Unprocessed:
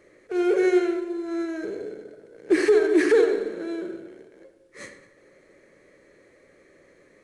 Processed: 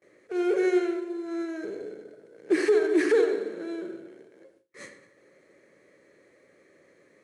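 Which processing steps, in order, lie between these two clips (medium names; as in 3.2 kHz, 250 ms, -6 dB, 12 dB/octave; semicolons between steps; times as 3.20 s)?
high-pass 110 Hz 12 dB/octave; gate with hold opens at -48 dBFS; trim -3.5 dB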